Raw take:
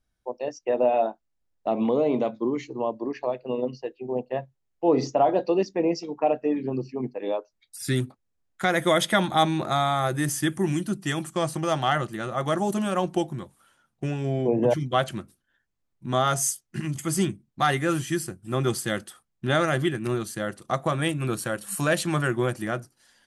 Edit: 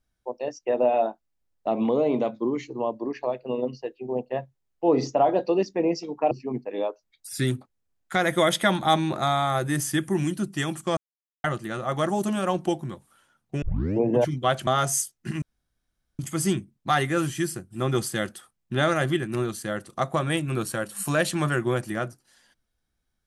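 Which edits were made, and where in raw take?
0:06.31–0:06.80: remove
0:11.46–0:11.93: silence
0:14.11: tape start 0.39 s
0:15.16–0:16.16: remove
0:16.91: splice in room tone 0.77 s

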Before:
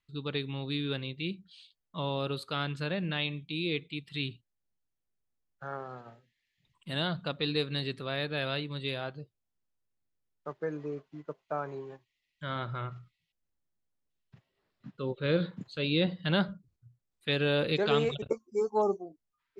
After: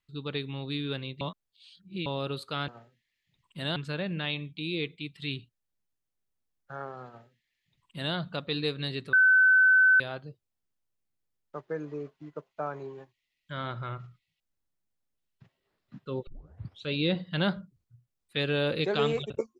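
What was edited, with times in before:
0:01.21–0:02.06: reverse
0:05.99–0:07.07: duplicate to 0:02.68
0:08.05–0:08.92: beep over 1,520 Hz −16.5 dBFS
0:15.19: tape start 0.60 s

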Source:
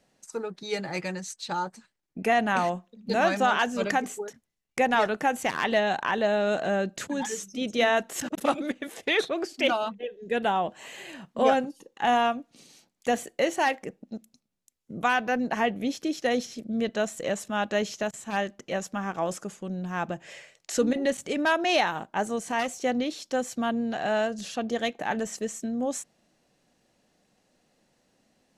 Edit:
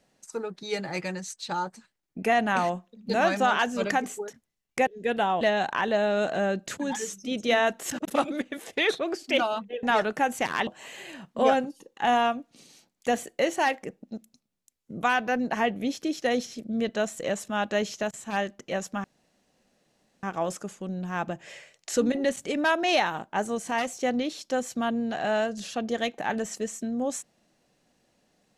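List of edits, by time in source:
0:04.87–0:05.71: swap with 0:10.13–0:10.67
0:19.04: splice in room tone 1.19 s

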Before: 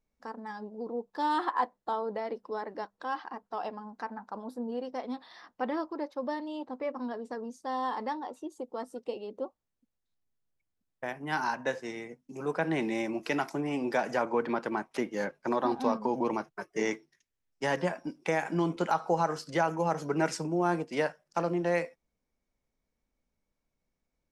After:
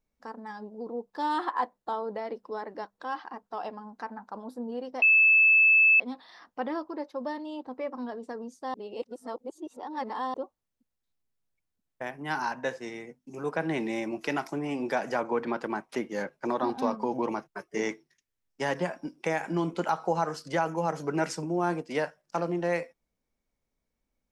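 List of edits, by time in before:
0:05.02: insert tone 2,620 Hz −16 dBFS 0.98 s
0:07.76–0:09.36: reverse

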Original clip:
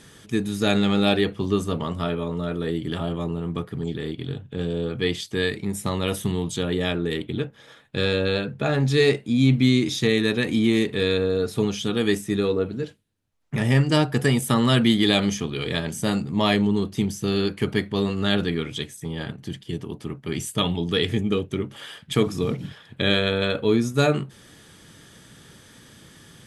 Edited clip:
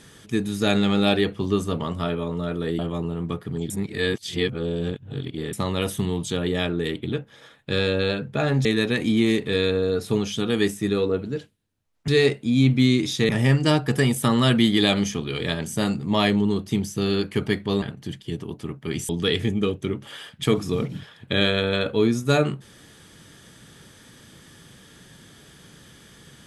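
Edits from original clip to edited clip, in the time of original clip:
0:02.79–0:03.05: remove
0:03.96–0:05.79: reverse
0:08.91–0:10.12: move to 0:13.55
0:18.08–0:19.23: remove
0:20.50–0:20.78: remove

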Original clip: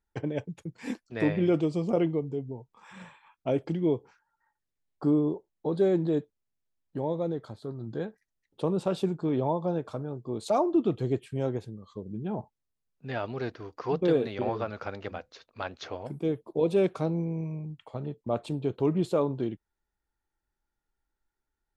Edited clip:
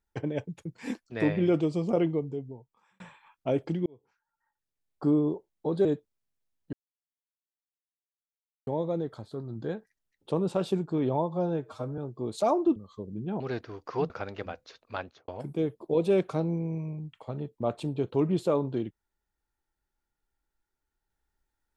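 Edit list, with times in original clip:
0:02.19–0:03.00: fade out
0:03.86–0:05.05: fade in
0:05.85–0:06.10: remove
0:06.98: splice in silence 1.94 s
0:09.60–0:10.06: time-stretch 1.5×
0:10.84–0:11.74: remove
0:12.38–0:13.31: remove
0:14.01–0:14.76: remove
0:15.64–0:15.94: fade out and dull

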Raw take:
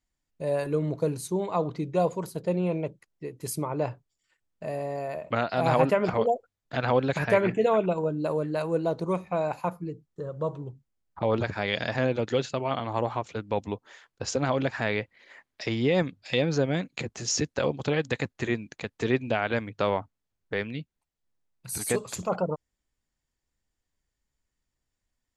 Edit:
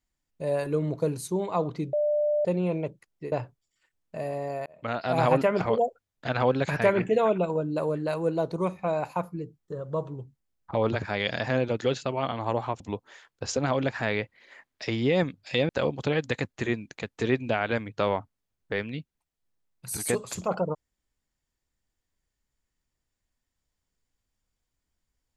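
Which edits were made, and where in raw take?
0:01.93–0:02.45: beep over 595 Hz −21.5 dBFS
0:03.32–0:03.80: remove
0:05.14–0:05.71: fade in equal-power
0:13.28–0:13.59: remove
0:16.48–0:17.50: remove

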